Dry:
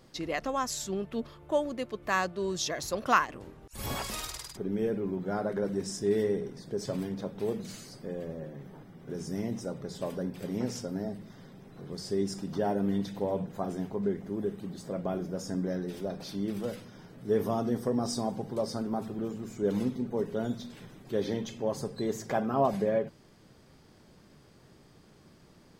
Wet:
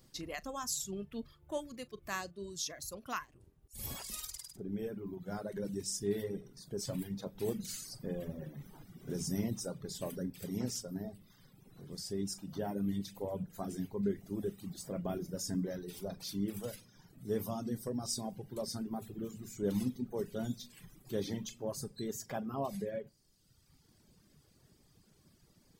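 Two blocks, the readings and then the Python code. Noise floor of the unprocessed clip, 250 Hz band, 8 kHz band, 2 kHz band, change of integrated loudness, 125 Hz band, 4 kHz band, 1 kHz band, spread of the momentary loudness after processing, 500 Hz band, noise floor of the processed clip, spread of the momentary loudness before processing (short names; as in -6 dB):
-58 dBFS, -6.0 dB, 0.0 dB, -11.0 dB, -7.0 dB, -4.5 dB, -3.5 dB, -12.0 dB, 9 LU, -9.0 dB, -68 dBFS, 12 LU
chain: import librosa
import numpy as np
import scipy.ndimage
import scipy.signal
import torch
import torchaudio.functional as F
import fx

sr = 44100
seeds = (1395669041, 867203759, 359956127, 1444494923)

y = librosa.effects.preemphasis(x, coef=0.8, zi=[0.0])
y = fx.doubler(y, sr, ms=40.0, db=-13.5)
y = fx.dereverb_blind(y, sr, rt60_s=1.3)
y = fx.rider(y, sr, range_db=10, speed_s=2.0)
y = fx.low_shelf(y, sr, hz=260.0, db=10.5)
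y = y * 10.0 ** (1.5 / 20.0)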